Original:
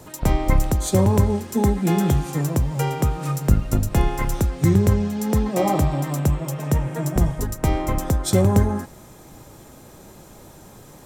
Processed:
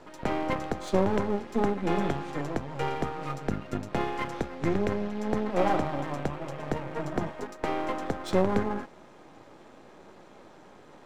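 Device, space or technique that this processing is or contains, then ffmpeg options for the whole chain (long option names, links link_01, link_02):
crystal radio: -filter_complex "[0:a]asettb=1/sr,asplit=3[link_01][link_02][link_03];[link_01]atrim=end=7.294[link_04];[link_02]atrim=start=7.29:end=8,asetpts=PTS-STARTPTS,afade=type=in:duration=0.004:curve=qsin,afade=type=out:start_time=0.706:duration=0.004:curve=qsin,highpass=270[link_05];[link_03]atrim=start=7.996[link_06];[link_04][link_05]acrossfade=duration=0.004:curve1=hsin:curve2=qsin[link_07];[link_07][link_06]acrossfade=duration=0.004:curve1=qsin:curve2=hsin,highpass=260,lowpass=3000,aeval=exprs='if(lt(val(0),0),0.251*val(0),val(0))':channel_layout=same"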